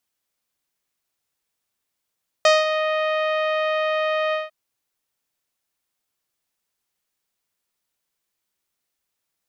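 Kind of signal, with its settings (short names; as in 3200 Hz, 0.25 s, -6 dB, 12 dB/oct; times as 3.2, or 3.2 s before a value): synth note saw D#5 24 dB/oct, low-pass 3200 Hz, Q 0.89, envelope 1 oct, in 0.38 s, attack 2.9 ms, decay 0.19 s, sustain -9 dB, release 0.17 s, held 1.88 s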